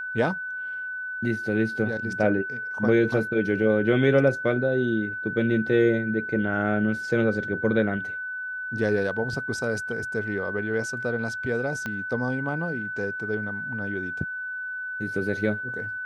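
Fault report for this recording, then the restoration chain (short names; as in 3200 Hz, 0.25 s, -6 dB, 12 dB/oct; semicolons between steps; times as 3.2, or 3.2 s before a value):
tone 1500 Hz -30 dBFS
11.86 pop -17 dBFS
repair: de-click; notch 1500 Hz, Q 30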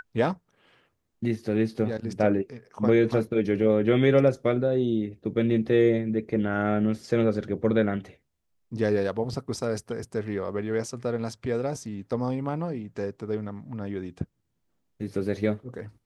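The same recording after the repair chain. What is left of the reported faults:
11.86 pop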